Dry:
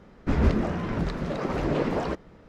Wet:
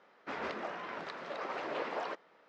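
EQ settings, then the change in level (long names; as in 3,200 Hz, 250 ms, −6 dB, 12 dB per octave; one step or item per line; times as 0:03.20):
band-pass filter 690–4,600 Hz
−4.0 dB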